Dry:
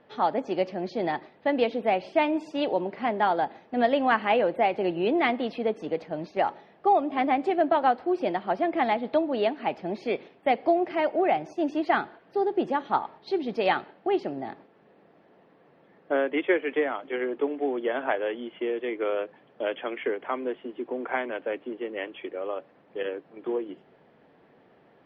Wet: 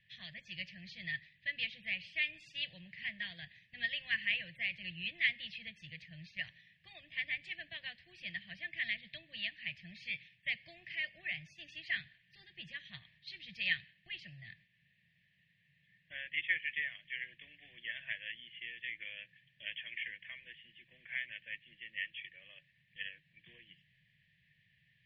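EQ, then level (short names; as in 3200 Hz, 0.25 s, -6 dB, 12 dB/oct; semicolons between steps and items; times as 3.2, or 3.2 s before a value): inverse Chebyshev band-stop 250–1400 Hz, stop band 40 dB; tone controls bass -6 dB, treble -13 dB; bell 1800 Hz +13.5 dB 0.25 oct; +3.0 dB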